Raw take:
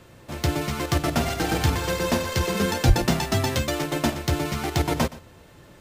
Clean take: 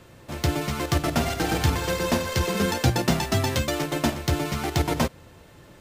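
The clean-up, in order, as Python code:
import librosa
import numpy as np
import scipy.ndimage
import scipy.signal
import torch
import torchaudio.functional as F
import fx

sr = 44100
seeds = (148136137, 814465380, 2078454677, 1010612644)

y = fx.fix_deplosive(x, sr, at_s=(2.87,))
y = fx.fix_echo_inverse(y, sr, delay_ms=120, level_db=-18.5)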